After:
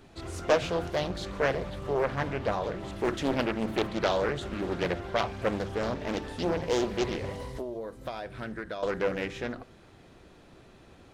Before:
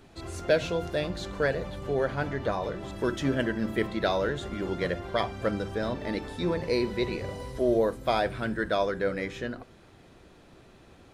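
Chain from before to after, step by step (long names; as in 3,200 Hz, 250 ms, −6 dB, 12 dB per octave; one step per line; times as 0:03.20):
0:07.44–0:08.83: downward compressor 16 to 1, threshold −33 dBFS, peak gain reduction 14 dB
highs frequency-modulated by the lows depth 0.86 ms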